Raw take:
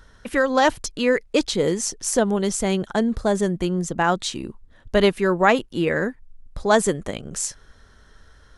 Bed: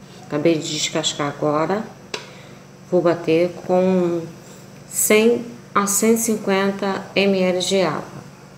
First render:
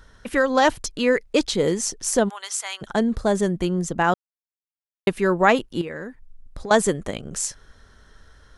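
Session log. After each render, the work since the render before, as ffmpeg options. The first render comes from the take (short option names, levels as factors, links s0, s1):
-filter_complex "[0:a]asplit=3[s0][s1][s2];[s0]afade=t=out:st=2.28:d=0.02[s3];[s1]highpass=f=960:w=0.5412,highpass=f=960:w=1.3066,afade=t=in:st=2.28:d=0.02,afade=t=out:st=2.81:d=0.02[s4];[s2]afade=t=in:st=2.81:d=0.02[s5];[s3][s4][s5]amix=inputs=3:normalize=0,asettb=1/sr,asplit=3[s6][s7][s8];[s6]atrim=end=5.814[s9];[s7]atrim=start=5.81:end=6.71,asetpts=PTS-STARTPTS,afade=t=in:d=0.004:c=qsin,afade=t=out:st=0.896:d=0.004:c=qsin,acompressor=threshold=0.0398:ratio=10:attack=3.2:release=140:knee=1:detection=peak[s10];[s8]atrim=start=6.706[s11];[s9][s10]acrossfade=d=0.004:c1=hsin:c2=qsin[s12];[s12][s11]acrossfade=d=0.004:c1=qsin:c2=hsin,asplit=3[s13][s14][s15];[s13]atrim=end=4.14,asetpts=PTS-STARTPTS,afade=t=out:st=4.136:d=0.004:c=hsin[s16];[s14]atrim=start=4.14:end=5.07,asetpts=PTS-STARTPTS,volume=0[s17];[s15]atrim=start=5.07,asetpts=PTS-STARTPTS,afade=t=in:d=0.004:c=hsin[s18];[s16][s17][s18]concat=n=3:v=0:a=1"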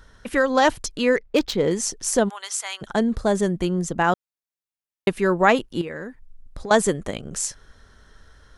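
-filter_complex "[0:a]asettb=1/sr,asplit=3[s0][s1][s2];[s0]atrim=end=1.164[s3];[s1]atrim=start=1.16:end=1.71,asetpts=PTS-STARTPTS,afade=t=in:d=0.004:c=qsin,afade=t=out:st=0.546:d=0.004:c=qsin,adynamicsmooth=sensitivity=2:basefreq=2600[s4];[s2]atrim=start=1.706[s5];[s3][s4]acrossfade=d=0.004:c1=hsin:c2=qsin[s6];[s6][s5]acrossfade=d=0.004:c1=qsin:c2=hsin"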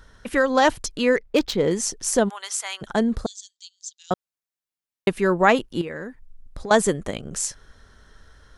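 -filter_complex "[0:a]asettb=1/sr,asplit=3[s0][s1][s2];[s0]atrim=end=3.264[s3];[s1]atrim=start=3.26:end=4.11,asetpts=PTS-STARTPTS,afade=t=in:d=0.004:c=qsin,afade=t=out:st=0.846:d=0.004:c=qsin,asuperpass=centerf=5200:order=8:qfactor=1.3[s4];[s2]atrim=start=4.106[s5];[s3][s4]acrossfade=d=0.004:c1=hsin:c2=qsin[s6];[s6][s5]acrossfade=d=0.004:c1=qsin:c2=hsin"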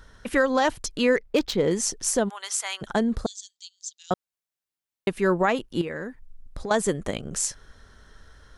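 -af "alimiter=limit=0.282:level=0:latency=1:release=313"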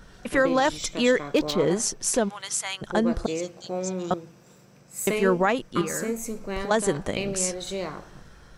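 -filter_complex "[1:a]volume=0.211[s0];[0:a][s0]amix=inputs=2:normalize=0"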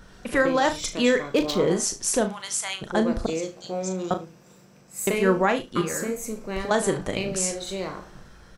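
-filter_complex "[0:a]asplit=2[s0][s1];[s1]adelay=37,volume=0.376[s2];[s0][s2]amix=inputs=2:normalize=0,aecho=1:1:73:0.133"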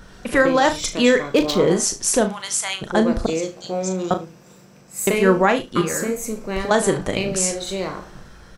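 -af "volume=1.78"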